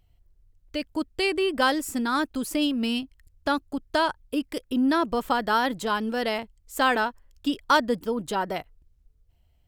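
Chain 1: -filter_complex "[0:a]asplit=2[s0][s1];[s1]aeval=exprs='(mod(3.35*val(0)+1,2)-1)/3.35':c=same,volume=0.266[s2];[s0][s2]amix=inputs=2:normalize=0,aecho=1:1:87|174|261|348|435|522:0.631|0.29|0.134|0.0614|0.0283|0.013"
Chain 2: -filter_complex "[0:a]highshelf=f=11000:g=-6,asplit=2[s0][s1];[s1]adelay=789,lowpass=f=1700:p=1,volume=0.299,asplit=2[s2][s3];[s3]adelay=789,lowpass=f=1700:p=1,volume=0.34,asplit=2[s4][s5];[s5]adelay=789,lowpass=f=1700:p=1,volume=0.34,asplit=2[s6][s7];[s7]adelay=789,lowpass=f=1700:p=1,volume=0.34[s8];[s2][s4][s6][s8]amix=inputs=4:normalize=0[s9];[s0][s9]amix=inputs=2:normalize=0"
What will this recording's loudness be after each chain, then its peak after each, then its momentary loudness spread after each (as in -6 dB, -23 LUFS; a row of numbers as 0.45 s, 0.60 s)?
-22.5 LUFS, -26.0 LUFS; -7.0 dBFS, -7.5 dBFS; 8 LU, 12 LU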